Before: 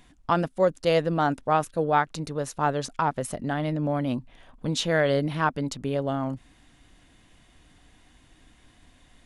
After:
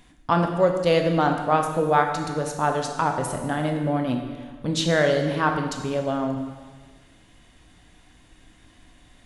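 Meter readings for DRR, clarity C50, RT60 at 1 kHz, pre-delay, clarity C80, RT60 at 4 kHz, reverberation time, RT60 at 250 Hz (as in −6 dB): 3.5 dB, 5.5 dB, 1.5 s, 8 ms, 7.0 dB, 1.4 s, 1.5 s, 1.4 s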